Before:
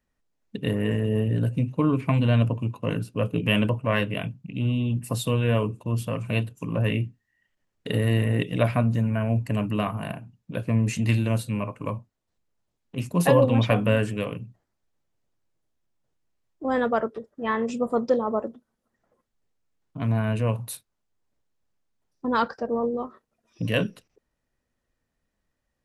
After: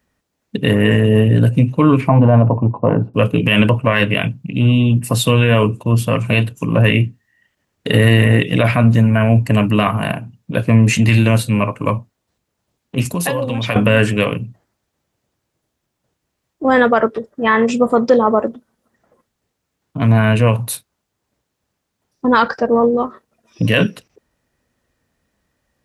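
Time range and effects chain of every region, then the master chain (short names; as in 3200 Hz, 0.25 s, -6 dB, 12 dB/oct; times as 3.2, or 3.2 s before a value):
2.08–3.14 synth low-pass 830 Hz, resonance Q 2.8 + mismatched tape noise reduction decoder only
13.05–13.76 HPF 52 Hz + high shelf 2500 Hz +9 dB + compressor, threshold -29 dBFS
whole clip: dynamic EQ 2100 Hz, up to +6 dB, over -40 dBFS, Q 0.82; HPF 54 Hz; maximiser +13 dB; gain -1 dB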